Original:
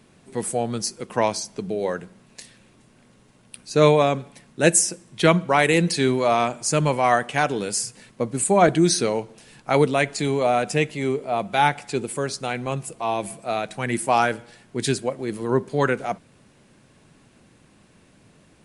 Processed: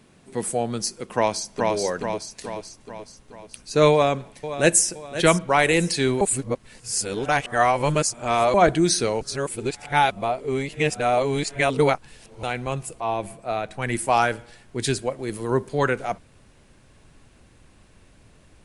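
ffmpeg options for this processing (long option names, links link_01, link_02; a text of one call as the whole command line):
ffmpeg -i in.wav -filter_complex "[0:a]asplit=2[link_01][link_02];[link_02]afade=type=in:start_time=1.14:duration=0.01,afade=type=out:start_time=1.74:duration=0.01,aecho=0:1:430|860|1290|1720|2150|2580|3010|3440:0.794328|0.436881|0.240284|0.132156|0.072686|0.0399773|0.0219875|0.0120931[link_03];[link_01][link_03]amix=inputs=2:normalize=0,asplit=2[link_04][link_05];[link_05]afade=type=in:start_time=3.91:duration=0.01,afade=type=out:start_time=4.86:duration=0.01,aecho=0:1:520|1040|1560|2080:0.251189|0.100475|0.0401902|0.0160761[link_06];[link_04][link_06]amix=inputs=2:normalize=0,asettb=1/sr,asplit=3[link_07][link_08][link_09];[link_07]atrim=end=13.004[link_10];[link_08]atrim=start=13:end=13.82,asetpts=PTS-STARTPTS,afade=type=in:duration=0.004:curve=qsin,afade=type=out:start_time=0.816:duration=0.004:curve=qsin,highshelf=frequency=3000:gain=-8.5[link_11];[link_09]atrim=start=13.816[link_12];[link_10][link_11]acrossfade=duration=0.004:curve1=hsin:curve2=qsin[link_13];[link_13][link_12]acrossfade=duration=0.004:curve1=qsin:curve2=hsin,asettb=1/sr,asplit=3[link_14][link_15][link_16];[link_14]atrim=end=15.234[link_17];[link_15]atrim=start=15.23:end=15.69,asetpts=PTS-STARTPTS,afade=type=in:duration=0.004:curve=qsin,afade=type=out:start_time=0.456:duration=0.004:curve=qsin,highshelf=frequency=9900:gain=11[link_18];[link_16]atrim=start=15.686[link_19];[link_17][link_18]acrossfade=duration=0.004:curve1=hsin:curve2=qsin[link_20];[link_20][link_19]acrossfade=duration=0.004:curve1=qsin:curve2=hsin,asplit=5[link_21][link_22][link_23][link_24][link_25];[link_21]atrim=end=6.212[link_26];[link_22]atrim=start=6.208:end=8.542,asetpts=PTS-STARTPTS,areverse[link_27];[link_23]atrim=start=8.538:end=9.212[link_28];[link_24]atrim=start=9.208:end=12.432,asetpts=PTS-STARTPTS,areverse[link_29];[link_25]atrim=start=12.428[link_30];[link_26][link_27]acrossfade=duration=0.004:curve1=hsin:curve2=hsin[link_31];[link_31][link_28]acrossfade=duration=0.004:curve1=hsin:curve2=hsin[link_32];[link_32][link_29]acrossfade=duration=0.004:curve1=hsin:curve2=hsin[link_33];[link_33][link_30]acrossfade=duration=0.004:curve1=hsin:curve2=hsin,asubboost=boost=6:cutoff=67" out.wav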